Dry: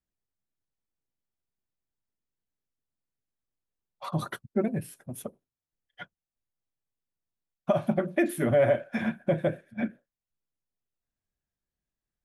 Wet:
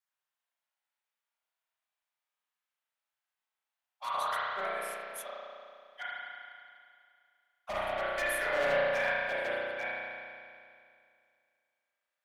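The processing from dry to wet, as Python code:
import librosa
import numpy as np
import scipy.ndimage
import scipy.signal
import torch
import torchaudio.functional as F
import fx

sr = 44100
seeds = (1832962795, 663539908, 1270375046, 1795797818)

y = scipy.signal.sosfilt(scipy.signal.butter(4, 740.0, 'highpass', fs=sr, output='sos'), x)
y = np.clip(y, -10.0 ** (-34.0 / 20.0), 10.0 ** (-34.0 / 20.0))
y = fx.rev_spring(y, sr, rt60_s=2.3, pass_ms=(33,), chirp_ms=50, drr_db=-8.5)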